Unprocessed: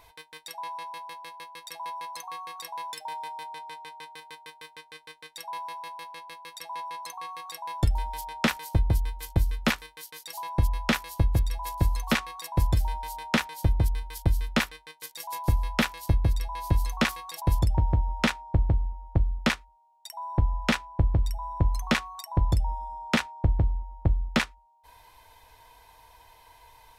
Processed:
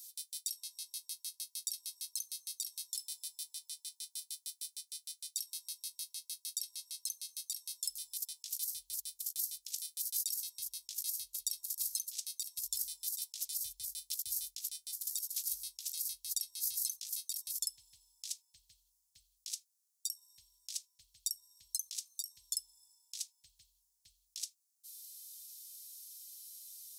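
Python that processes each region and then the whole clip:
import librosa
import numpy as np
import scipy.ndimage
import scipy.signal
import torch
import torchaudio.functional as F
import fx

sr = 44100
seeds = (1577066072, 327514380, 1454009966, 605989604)

y = fx.chain(x, sr, fx.low_shelf(hz=250.0, db=9.0),
    fx.echo_single(ms=776, db=-15.0), at=(12.32, 15.96))
y = scipy.signal.sosfilt(scipy.signal.cheby2(4, 70, 1300.0, 'highpass', fs=sr, output='sos'), y)
y = fx.over_compress(y, sr, threshold_db=-47.0, ratio=-0.5)
y = y * librosa.db_to_amplitude(10.5)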